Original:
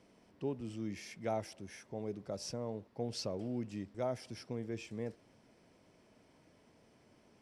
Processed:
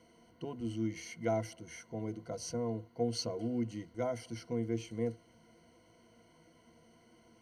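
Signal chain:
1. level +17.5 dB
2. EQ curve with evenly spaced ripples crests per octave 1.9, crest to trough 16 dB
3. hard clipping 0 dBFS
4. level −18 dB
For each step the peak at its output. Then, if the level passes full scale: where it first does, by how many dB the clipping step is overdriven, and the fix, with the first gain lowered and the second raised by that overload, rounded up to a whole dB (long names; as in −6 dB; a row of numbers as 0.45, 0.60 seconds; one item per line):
−6.5, −2.0, −2.0, −20.0 dBFS
no step passes full scale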